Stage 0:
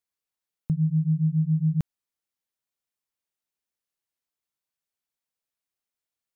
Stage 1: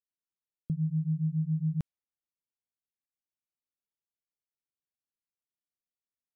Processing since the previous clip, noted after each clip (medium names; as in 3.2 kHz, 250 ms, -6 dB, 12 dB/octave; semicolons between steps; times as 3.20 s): level-controlled noise filter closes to 400 Hz, open at -21 dBFS; trim -6.5 dB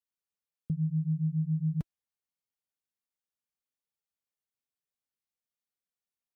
comb of notches 330 Hz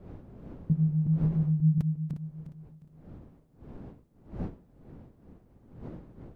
backward echo that repeats 178 ms, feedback 58%, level -7 dB; wind noise 240 Hz -50 dBFS; trim +4.5 dB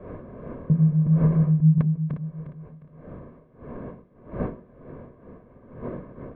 distance through air 380 m; reverberation RT60 0.40 s, pre-delay 3 ms, DRR 18 dB; trim +5.5 dB